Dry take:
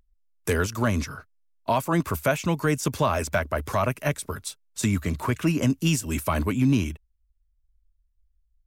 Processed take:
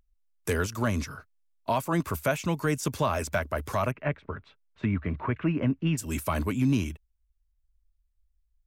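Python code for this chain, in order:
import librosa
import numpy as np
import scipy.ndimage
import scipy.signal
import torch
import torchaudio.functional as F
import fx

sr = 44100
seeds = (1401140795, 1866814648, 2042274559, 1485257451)

y = fx.lowpass(x, sr, hz=2500.0, slope=24, at=(3.9, 5.97), fade=0.02)
y = F.gain(torch.from_numpy(y), -3.5).numpy()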